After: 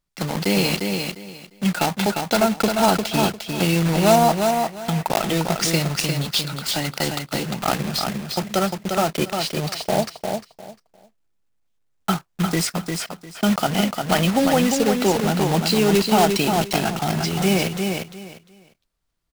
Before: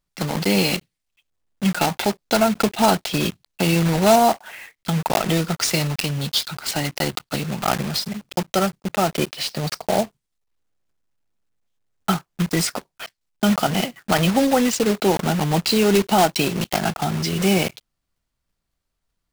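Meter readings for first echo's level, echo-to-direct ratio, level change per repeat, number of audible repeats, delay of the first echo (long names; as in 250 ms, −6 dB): −5.0 dB, −5.0 dB, −13.5 dB, 3, 351 ms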